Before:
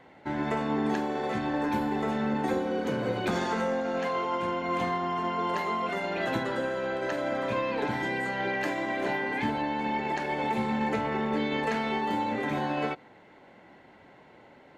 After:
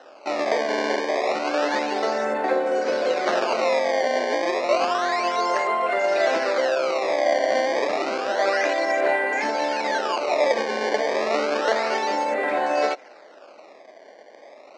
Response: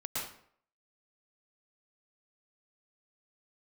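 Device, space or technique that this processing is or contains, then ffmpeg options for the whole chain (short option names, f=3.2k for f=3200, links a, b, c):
circuit-bent sampling toy: -af "acrusher=samples=19:mix=1:aa=0.000001:lfo=1:lforange=30.4:lforate=0.3,highpass=240,highpass=470,equalizer=f=610:t=q:w=4:g=8,equalizer=f=940:t=q:w=4:g=-5,equalizer=f=3.3k:t=q:w=4:g=-9,lowpass=f=5.2k:w=0.5412,lowpass=f=5.2k:w=1.3066,volume=9dB"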